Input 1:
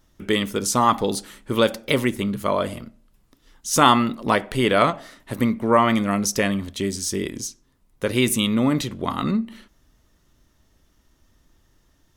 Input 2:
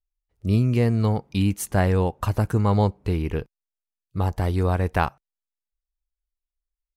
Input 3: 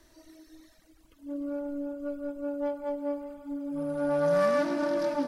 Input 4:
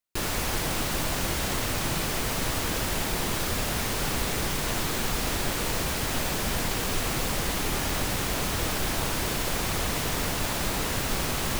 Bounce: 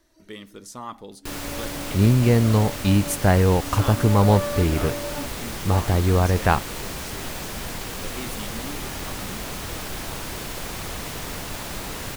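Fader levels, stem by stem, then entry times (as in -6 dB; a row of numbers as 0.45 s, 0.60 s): -18.0 dB, +3.0 dB, -4.0 dB, -4.0 dB; 0.00 s, 1.50 s, 0.00 s, 1.10 s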